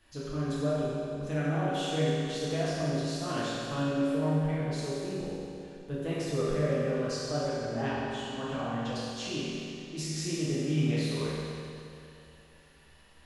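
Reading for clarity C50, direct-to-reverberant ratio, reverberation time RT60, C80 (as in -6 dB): -4.5 dB, -10.0 dB, 2.7 s, -2.0 dB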